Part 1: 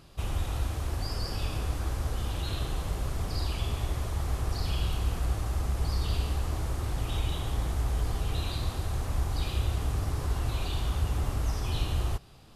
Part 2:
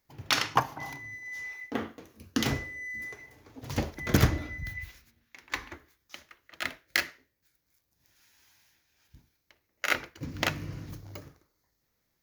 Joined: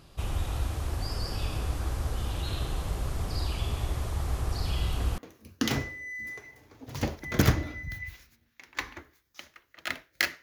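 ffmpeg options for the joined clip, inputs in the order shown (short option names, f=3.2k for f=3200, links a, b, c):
-filter_complex "[1:a]asplit=2[a][b];[0:a]apad=whole_dur=10.42,atrim=end=10.42,atrim=end=5.182[c];[b]atrim=start=1.928:end=7.17[d];[a]atrim=start=1.51:end=1.93,asetpts=PTS-STARTPTS,volume=-12.5dB,afade=t=in:d=0.004:c=hsin,afade=t=out:st=0.416:d=0.004:c=hsin,adelay=4760[e];[c][d]acrossfade=d=0.004:c1=hsin:c2=hsin[f];[f][e]amix=inputs=2:normalize=0"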